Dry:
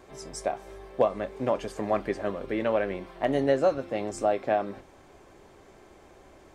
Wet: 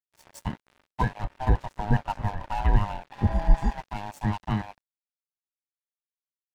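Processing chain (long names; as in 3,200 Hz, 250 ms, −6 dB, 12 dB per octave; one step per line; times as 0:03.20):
neighbouring bands swapped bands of 500 Hz
0:03.14–0:03.69: healed spectral selection 690–4,700 Hz after
0:01.23–0:03.55: spectral tilt −2 dB per octave
dead-zone distortion −37.5 dBFS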